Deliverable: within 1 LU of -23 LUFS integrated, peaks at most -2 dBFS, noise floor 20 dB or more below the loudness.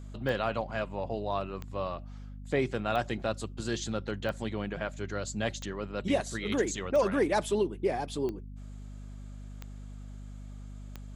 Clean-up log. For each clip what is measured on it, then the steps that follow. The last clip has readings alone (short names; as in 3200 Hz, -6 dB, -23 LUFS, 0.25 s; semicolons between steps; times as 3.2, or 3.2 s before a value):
clicks 9; hum 50 Hz; harmonics up to 250 Hz; hum level -41 dBFS; loudness -32.0 LUFS; peak -15.0 dBFS; loudness target -23.0 LUFS
-> de-click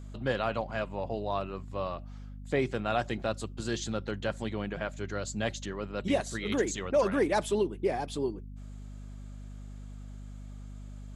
clicks 0; hum 50 Hz; harmonics up to 250 Hz; hum level -41 dBFS
-> de-hum 50 Hz, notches 5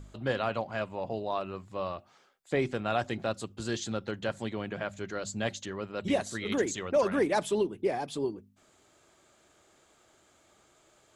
hum none; loudness -32.5 LUFS; peak -14.5 dBFS; loudness target -23.0 LUFS
-> gain +9.5 dB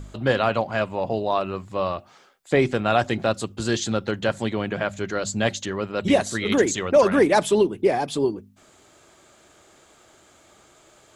loudness -23.0 LUFS; peak -5.0 dBFS; noise floor -55 dBFS